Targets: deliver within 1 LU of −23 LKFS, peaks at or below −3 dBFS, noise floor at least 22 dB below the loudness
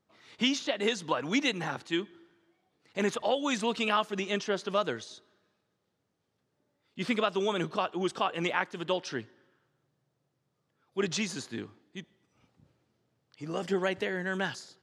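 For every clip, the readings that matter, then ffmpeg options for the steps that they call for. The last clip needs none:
integrated loudness −31.5 LKFS; sample peak −12.0 dBFS; target loudness −23.0 LKFS
→ -af "volume=8.5dB"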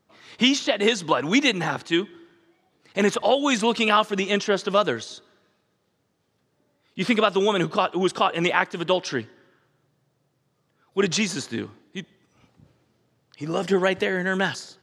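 integrated loudness −23.0 LKFS; sample peak −3.5 dBFS; background noise floor −71 dBFS

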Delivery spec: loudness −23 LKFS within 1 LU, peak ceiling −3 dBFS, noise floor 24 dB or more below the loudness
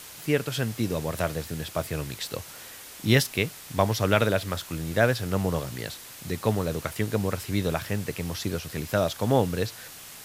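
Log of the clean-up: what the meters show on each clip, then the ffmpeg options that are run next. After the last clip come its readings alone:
background noise floor −44 dBFS; target noise floor −52 dBFS; integrated loudness −27.5 LKFS; sample peak −4.5 dBFS; target loudness −23.0 LKFS
→ -af "afftdn=noise_reduction=8:noise_floor=-44"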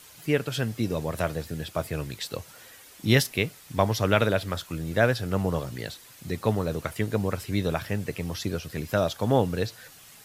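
background noise floor −50 dBFS; target noise floor −52 dBFS
→ -af "afftdn=noise_reduction=6:noise_floor=-50"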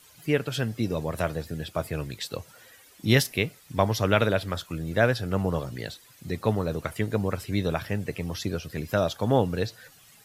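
background noise floor −55 dBFS; integrated loudness −27.5 LKFS; sample peak −5.0 dBFS; target loudness −23.0 LKFS
→ -af "volume=4.5dB,alimiter=limit=-3dB:level=0:latency=1"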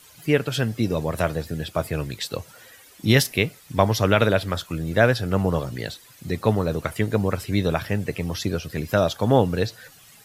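integrated loudness −23.5 LKFS; sample peak −3.0 dBFS; background noise floor −50 dBFS

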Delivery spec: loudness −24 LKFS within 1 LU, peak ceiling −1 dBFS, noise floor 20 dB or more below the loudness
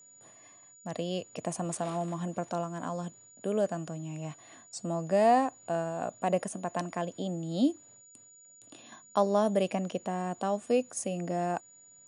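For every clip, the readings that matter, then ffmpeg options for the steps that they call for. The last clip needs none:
interfering tone 6,900 Hz; level of the tone −54 dBFS; integrated loudness −31.5 LKFS; sample peak −12.5 dBFS; target loudness −24.0 LKFS
→ -af "bandreject=frequency=6900:width=30"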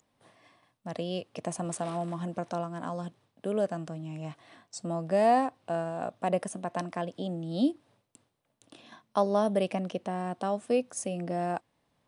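interfering tone none found; integrated loudness −31.5 LKFS; sample peak −13.0 dBFS; target loudness −24.0 LKFS
→ -af "volume=7.5dB"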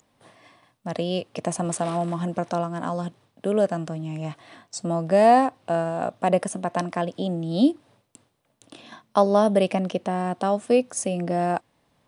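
integrated loudness −24.0 LKFS; sample peak −5.5 dBFS; background noise floor −69 dBFS

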